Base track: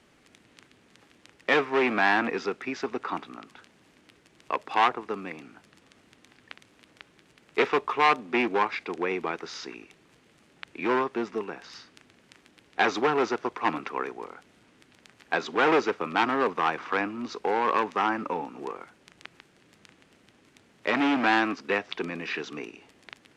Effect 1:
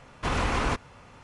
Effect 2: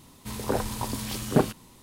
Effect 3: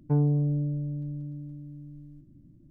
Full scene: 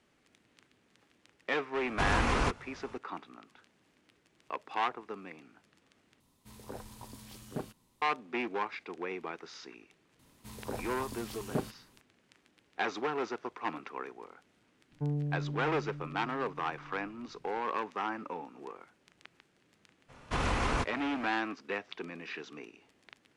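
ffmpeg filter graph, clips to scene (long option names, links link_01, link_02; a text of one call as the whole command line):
ffmpeg -i bed.wav -i cue0.wav -i cue1.wav -i cue2.wav -filter_complex "[1:a]asplit=2[link_01][link_02];[2:a]asplit=2[link_03][link_04];[0:a]volume=-9.5dB,asplit=2[link_05][link_06];[link_05]atrim=end=6.204[link_07];[link_03]atrim=end=1.82,asetpts=PTS-STARTPTS,volume=-17.5dB[link_08];[link_06]atrim=start=8.016[link_09];[link_01]atrim=end=1.23,asetpts=PTS-STARTPTS,volume=-2.5dB,afade=type=in:duration=0.004:curve=hsin,afade=type=out:start_time=1.226:duration=0.004:curve=hsin,adelay=1750[link_10];[link_04]atrim=end=1.82,asetpts=PTS-STARTPTS,volume=-12dB,afade=type=in:duration=0.004:curve=hsin,afade=type=out:start_time=1.816:duration=0.004:curve=hsin,adelay=10190[link_11];[3:a]atrim=end=2.7,asetpts=PTS-STARTPTS,volume=-9.5dB,afade=type=in:duration=0.004:curve=hsin,afade=type=out:start_time=2.696:duration=0.004:curve=hsin,adelay=14910[link_12];[link_02]atrim=end=1.23,asetpts=PTS-STARTPTS,volume=-4dB,afade=type=in:duration=0.02,afade=type=out:start_time=1.21:duration=0.02,adelay=20080[link_13];[link_07][link_08]acrossfade=duration=0.004:curve1=hsin:curve2=hsin[link_14];[link_14][link_09]acrossfade=duration=0.004:curve1=hsin:curve2=hsin[link_15];[link_15][link_10][link_11][link_12][link_13]amix=inputs=5:normalize=0" out.wav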